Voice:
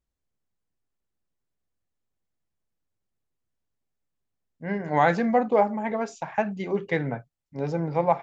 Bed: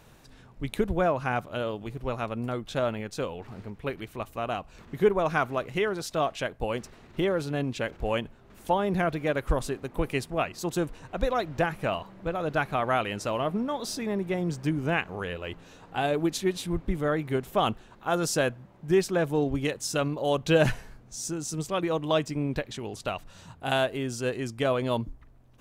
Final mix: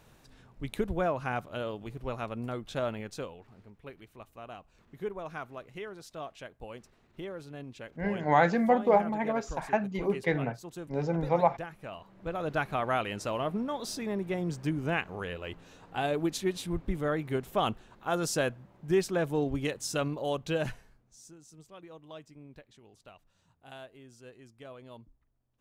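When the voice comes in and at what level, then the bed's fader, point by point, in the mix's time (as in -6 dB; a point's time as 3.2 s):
3.35 s, -2.5 dB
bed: 3.13 s -4.5 dB
3.47 s -14 dB
11.9 s -14 dB
12.36 s -3.5 dB
20.14 s -3.5 dB
21.44 s -21.5 dB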